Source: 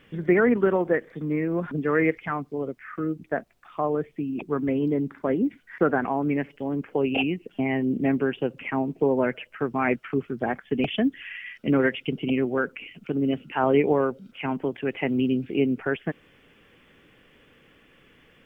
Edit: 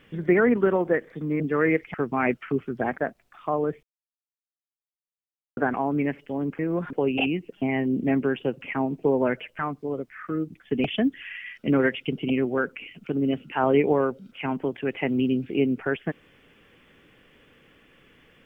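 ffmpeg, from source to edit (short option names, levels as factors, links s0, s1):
-filter_complex "[0:a]asplit=10[s0][s1][s2][s3][s4][s5][s6][s7][s8][s9];[s0]atrim=end=1.402[s10];[s1]atrim=start=1.738:end=2.282[s11];[s2]atrim=start=9.558:end=10.602[s12];[s3]atrim=start=3.288:end=4.14,asetpts=PTS-STARTPTS,afade=t=out:st=0.848:d=0.004:c=hsin[s13];[s4]atrim=start=4.14:end=5.88,asetpts=PTS-STARTPTS,volume=0[s14];[s5]atrim=start=5.88:end=6.902,asetpts=PTS-STARTPTS,afade=t=in:d=0.004:c=hsin[s15];[s6]atrim=start=1.398:end=1.742[s16];[s7]atrim=start=6.898:end=9.562[s17];[s8]atrim=start=2.278:end=3.292[s18];[s9]atrim=start=10.598[s19];[s10][s11]acrossfade=d=0.004:c1=hsin:c2=hsin[s20];[s20][s12]acrossfade=d=0.004:c1=hsin:c2=hsin[s21];[s13][s14][s15]concat=n=3:v=0:a=1[s22];[s21][s22]acrossfade=d=0.004:c1=hsin:c2=hsin[s23];[s23][s16]acrossfade=d=0.004:c1=hsin:c2=hsin[s24];[s24][s17]acrossfade=d=0.004:c1=hsin:c2=hsin[s25];[s25][s18]acrossfade=d=0.004:c1=hsin:c2=hsin[s26];[s26][s19]acrossfade=d=0.004:c1=hsin:c2=hsin"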